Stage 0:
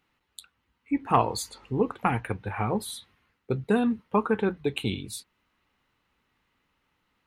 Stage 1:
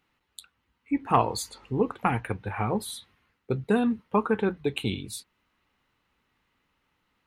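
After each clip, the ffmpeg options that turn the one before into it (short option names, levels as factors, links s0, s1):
-af anull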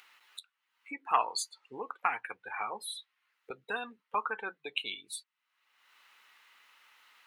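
-af "afftdn=nr=18:nf=-36,highpass=1200,acompressor=mode=upward:threshold=0.0126:ratio=2.5,volume=1.12"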